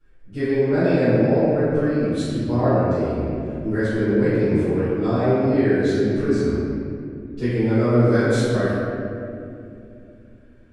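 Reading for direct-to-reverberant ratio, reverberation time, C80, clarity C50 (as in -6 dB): -18.5 dB, 2.6 s, -2.5 dB, -4.5 dB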